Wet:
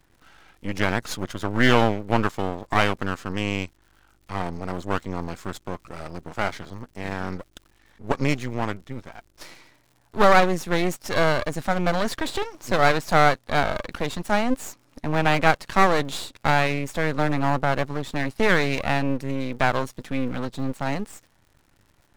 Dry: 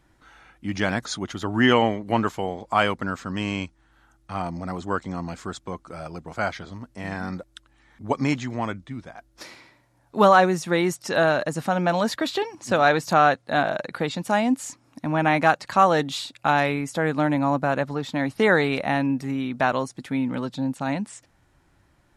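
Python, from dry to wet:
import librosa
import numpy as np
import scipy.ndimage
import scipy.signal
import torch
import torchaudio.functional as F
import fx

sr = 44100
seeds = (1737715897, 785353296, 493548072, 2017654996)

y = np.maximum(x, 0.0)
y = fx.dmg_crackle(y, sr, seeds[0], per_s=92.0, level_db=-49.0)
y = y * 10.0 ** (3.0 / 20.0)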